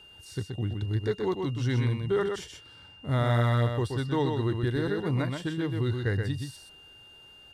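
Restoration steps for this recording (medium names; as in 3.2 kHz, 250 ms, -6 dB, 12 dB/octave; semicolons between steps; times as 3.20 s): band-stop 2.8 kHz, Q 30; inverse comb 126 ms -5 dB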